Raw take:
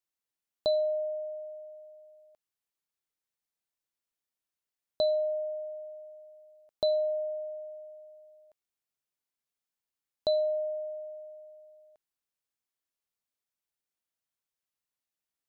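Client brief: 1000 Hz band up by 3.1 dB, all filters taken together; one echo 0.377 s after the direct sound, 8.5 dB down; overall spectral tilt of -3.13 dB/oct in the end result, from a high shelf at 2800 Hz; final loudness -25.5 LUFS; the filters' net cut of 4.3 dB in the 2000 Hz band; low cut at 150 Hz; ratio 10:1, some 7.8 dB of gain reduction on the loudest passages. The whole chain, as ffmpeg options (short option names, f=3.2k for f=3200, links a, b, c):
-af "highpass=150,equalizer=f=1k:t=o:g=8,equalizer=f=2k:t=o:g=-8.5,highshelf=f=2.8k:g=-7.5,acompressor=threshold=-30dB:ratio=10,aecho=1:1:377:0.376,volume=9.5dB"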